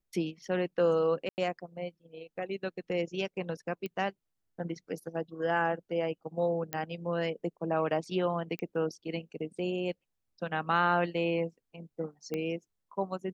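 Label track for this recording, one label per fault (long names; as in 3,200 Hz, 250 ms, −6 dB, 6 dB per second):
1.290000	1.380000	drop-out 89 ms
3.860000	3.860000	click −24 dBFS
6.730000	6.730000	click −16 dBFS
8.590000	8.590000	click −23 dBFS
12.340000	12.340000	click −21 dBFS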